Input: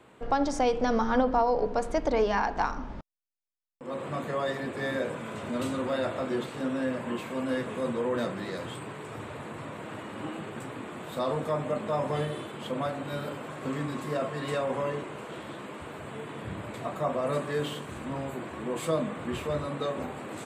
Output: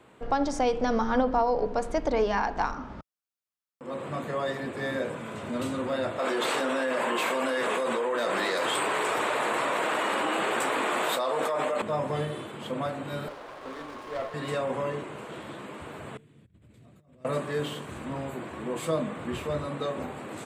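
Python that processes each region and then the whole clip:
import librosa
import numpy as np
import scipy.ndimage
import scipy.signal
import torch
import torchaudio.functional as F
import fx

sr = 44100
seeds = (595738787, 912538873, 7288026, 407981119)

y = fx.chain(x, sr, fx.highpass(hz=56.0, slope=12),
    fx.peak_eq(hz=1300.0, db=6.0, octaves=0.32), at=(2.74, 3.85))
y = fx.chain(y, sr, fx.highpass(hz=520.0, slope=12),
    fx.env_flatten(amount_pct=100), at=(6.19, 11.82))
y = fx.chain(y, sr, fx.highpass(hz=490.0, slope=12),
    fx.air_absorb(metres=80.0),
    fx.running_max(window=9), at=(13.28, 14.34))
y = fx.chain(y, sr, fx.tone_stack(knobs='10-0-1'),
    fx.over_compress(threshold_db=-55.0, ratio=-0.5), at=(16.17, 17.25))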